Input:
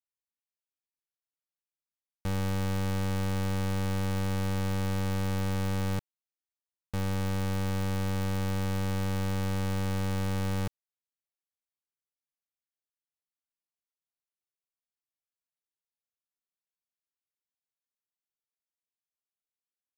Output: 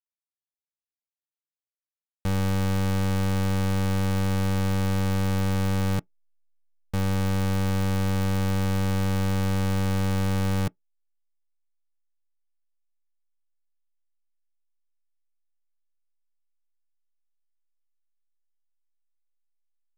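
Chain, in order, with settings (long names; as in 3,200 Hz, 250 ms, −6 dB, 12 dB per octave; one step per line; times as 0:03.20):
parametric band 180 Hz +5.5 dB 1.2 octaves
leveller curve on the samples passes 2
slack as between gear wheels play −39 dBFS
on a send: convolution reverb RT60 0.10 s, pre-delay 3 ms, DRR 23.5 dB
on the sum: level +1.5 dB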